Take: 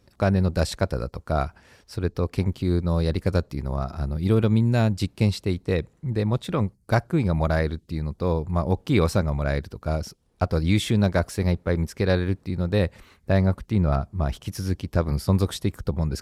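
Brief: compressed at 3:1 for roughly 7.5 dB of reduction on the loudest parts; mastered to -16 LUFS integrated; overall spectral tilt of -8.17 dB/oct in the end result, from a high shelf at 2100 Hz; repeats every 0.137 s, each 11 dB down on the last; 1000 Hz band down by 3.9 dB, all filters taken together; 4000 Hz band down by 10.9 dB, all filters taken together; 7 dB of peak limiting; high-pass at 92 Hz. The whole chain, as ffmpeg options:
-af "highpass=92,equalizer=f=1k:t=o:g=-3.5,highshelf=f=2.1k:g=-8.5,equalizer=f=4k:t=o:g=-5,acompressor=threshold=-26dB:ratio=3,alimiter=limit=-19.5dB:level=0:latency=1,aecho=1:1:137|274|411:0.282|0.0789|0.0221,volume=17dB"

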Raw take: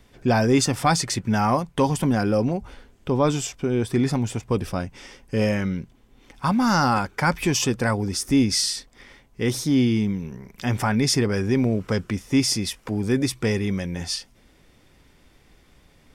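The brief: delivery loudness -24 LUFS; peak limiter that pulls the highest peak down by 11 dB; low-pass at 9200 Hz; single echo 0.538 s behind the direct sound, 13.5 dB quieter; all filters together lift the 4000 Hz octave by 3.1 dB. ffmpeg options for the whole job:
-af "lowpass=9.2k,equalizer=f=4k:t=o:g=4.5,alimiter=limit=-18dB:level=0:latency=1,aecho=1:1:538:0.211,volume=3dB"

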